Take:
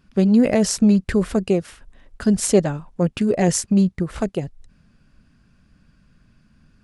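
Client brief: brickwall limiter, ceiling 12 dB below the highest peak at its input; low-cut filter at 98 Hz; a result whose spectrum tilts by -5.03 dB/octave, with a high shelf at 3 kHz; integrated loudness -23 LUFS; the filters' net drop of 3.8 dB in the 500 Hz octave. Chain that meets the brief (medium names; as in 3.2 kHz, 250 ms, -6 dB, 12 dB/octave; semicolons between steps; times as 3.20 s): high-pass 98 Hz; peaking EQ 500 Hz -5 dB; treble shelf 3 kHz +3.5 dB; trim +0.5 dB; peak limiter -13 dBFS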